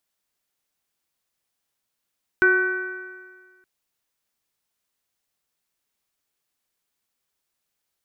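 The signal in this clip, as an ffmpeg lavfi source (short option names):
-f lavfi -i "aevalsrc='0.126*pow(10,-3*t/1.63)*sin(2*PI*367.64*t)+0.0126*pow(10,-3*t/1.63)*sin(2*PI*739.12*t)+0.0299*pow(10,-3*t/1.63)*sin(2*PI*1118.21*t)+0.224*pow(10,-3*t/1.63)*sin(2*PI*1508.54*t)+0.0299*pow(10,-3*t/1.63)*sin(2*PI*1913.6*t)+0.0178*pow(10,-3*t/1.63)*sin(2*PI*2336.61*t)':d=1.22:s=44100"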